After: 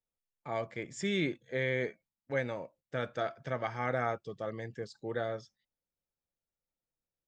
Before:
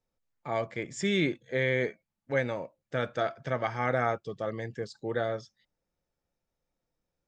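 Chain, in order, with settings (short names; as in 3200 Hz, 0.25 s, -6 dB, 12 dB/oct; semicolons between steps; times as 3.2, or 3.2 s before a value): gate -56 dBFS, range -8 dB; gain -4.5 dB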